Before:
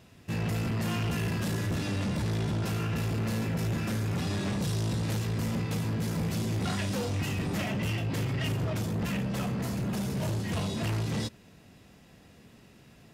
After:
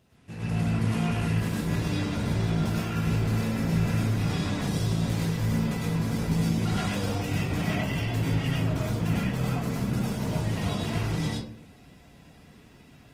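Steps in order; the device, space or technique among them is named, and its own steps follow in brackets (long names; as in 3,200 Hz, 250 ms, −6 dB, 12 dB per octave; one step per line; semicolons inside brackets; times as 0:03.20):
speakerphone in a meeting room (convolution reverb RT60 0.50 s, pre-delay 96 ms, DRR −4.5 dB; automatic gain control gain up to 5 dB; level −8 dB; Opus 20 kbit/s 48,000 Hz)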